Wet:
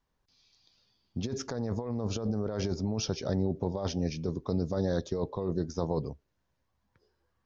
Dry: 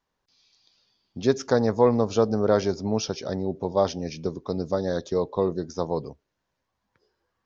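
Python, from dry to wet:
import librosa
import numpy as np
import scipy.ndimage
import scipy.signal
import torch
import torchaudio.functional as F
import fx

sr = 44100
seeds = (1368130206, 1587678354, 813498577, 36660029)

y = fx.low_shelf(x, sr, hz=160.0, db=11.5)
y = fx.over_compress(y, sr, threshold_db=-24.0, ratio=-1.0)
y = F.gain(torch.from_numpy(y), -6.5).numpy()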